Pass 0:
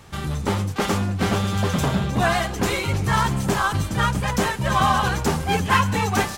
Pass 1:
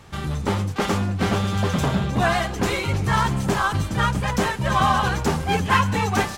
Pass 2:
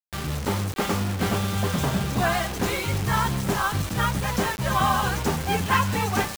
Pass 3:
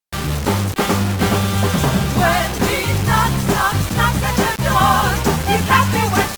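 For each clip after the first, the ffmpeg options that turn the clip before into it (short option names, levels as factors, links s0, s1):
-af "highshelf=f=7800:g=-6"
-af "acrusher=bits=4:mix=0:aa=0.000001,volume=0.708"
-af "volume=2.51" -ar 48000 -c:a libopus -b:a 48k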